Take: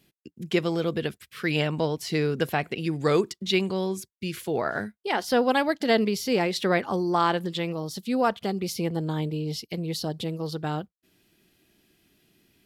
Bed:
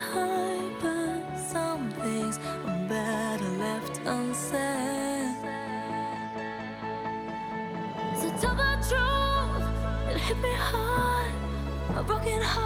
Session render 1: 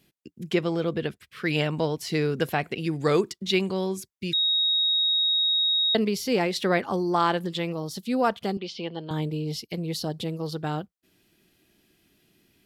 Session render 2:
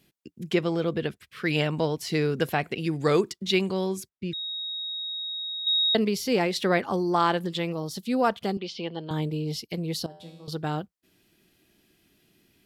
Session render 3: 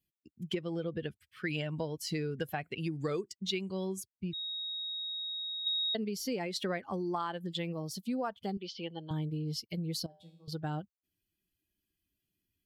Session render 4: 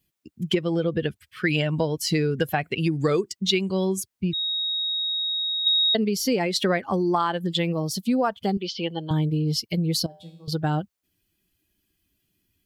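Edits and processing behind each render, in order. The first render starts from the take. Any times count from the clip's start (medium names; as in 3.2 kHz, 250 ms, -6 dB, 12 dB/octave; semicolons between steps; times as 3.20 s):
0.54–1.46 s: treble shelf 5.3 kHz -9.5 dB; 4.33–5.95 s: bleep 3.77 kHz -20 dBFS; 8.57–9.11 s: cabinet simulation 280–4500 Hz, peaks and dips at 290 Hz -7 dB, 460 Hz -4 dB, 700 Hz -3 dB, 1.3 kHz -5 dB, 2.1 kHz -5 dB, 3.1 kHz +9 dB
4.09–5.67 s: low-pass 1.2 kHz 6 dB/octave; 10.06–10.48 s: feedback comb 86 Hz, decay 0.97 s, mix 90%
expander on every frequency bin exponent 1.5; compression, threshold -32 dBFS, peak gain reduction 12.5 dB
trim +12 dB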